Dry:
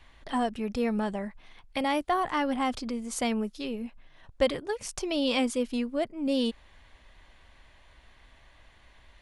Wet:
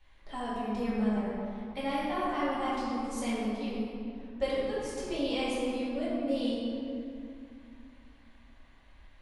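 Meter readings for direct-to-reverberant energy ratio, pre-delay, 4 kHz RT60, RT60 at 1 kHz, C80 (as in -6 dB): -9.5 dB, 3 ms, 1.4 s, 2.3 s, -1.0 dB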